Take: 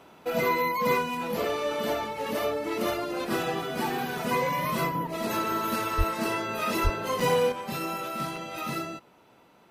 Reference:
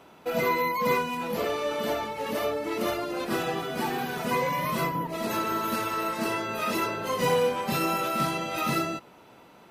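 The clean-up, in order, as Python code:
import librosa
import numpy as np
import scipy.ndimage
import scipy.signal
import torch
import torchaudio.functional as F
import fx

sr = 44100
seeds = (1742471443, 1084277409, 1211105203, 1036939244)

y = fx.highpass(x, sr, hz=140.0, slope=24, at=(5.97, 6.09), fade=0.02)
y = fx.highpass(y, sr, hz=140.0, slope=24, at=(6.83, 6.95), fade=0.02)
y = fx.fix_interpolate(y, sr, at_s=(7.2, 8.36), length_ms=3.8)
y = fx.fix_level(y, sr, at_s=7.52, step_db=5.5)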